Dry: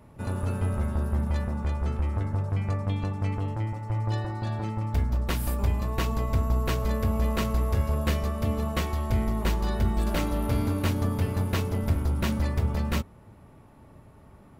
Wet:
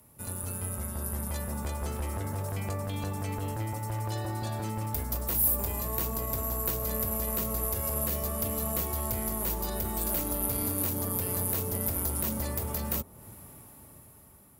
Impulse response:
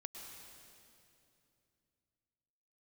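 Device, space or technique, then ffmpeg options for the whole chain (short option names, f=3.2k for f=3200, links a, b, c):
FM broadcast chain: -filter_complex "[0:a]highpass=43,dynaudnorm=f=450:g=7:m=14dB,acrossover=split=330|980[a][b][c];[a]acompressor=threshold=-24dB:ratio=4[d];[b]acompressor=threshold=-26dB:ratio=4[e];[c]acompressor=threshold=-39dB:ratio=4[f];[d][e][f]amix=inputs=3:normalize=0,aemphasis=mode=production:type=50fm,alimiter=limit=-16dB:level=0:latency=1:release=21,asoftclip=type=hard:threshold=-19dB,lowpass=f=15k:w=0.5412,lowpass=f=15k:w=1.3066,aemphasis=mode=production:type=50fm,volume=-8.5dB"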